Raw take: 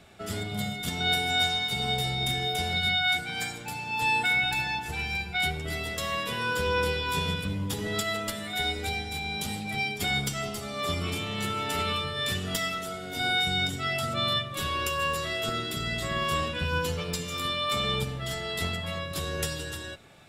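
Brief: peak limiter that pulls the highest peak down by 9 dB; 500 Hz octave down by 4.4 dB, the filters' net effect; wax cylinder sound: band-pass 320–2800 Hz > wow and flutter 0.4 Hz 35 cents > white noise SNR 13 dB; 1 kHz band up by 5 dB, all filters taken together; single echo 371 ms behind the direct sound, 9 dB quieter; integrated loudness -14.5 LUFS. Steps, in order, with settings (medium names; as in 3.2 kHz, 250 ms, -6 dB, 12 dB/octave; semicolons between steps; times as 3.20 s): peaking EQ 500 Hz -8 dB; peaking EQ 1 kHz +9 dB; peak limiter -22.5 dBFS; band-pass 320–2800 Hz; delay 371 ms -9 dB; wow and flutter 0.4 Hz 35 cents; white noise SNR 13 dB; trim +17 dB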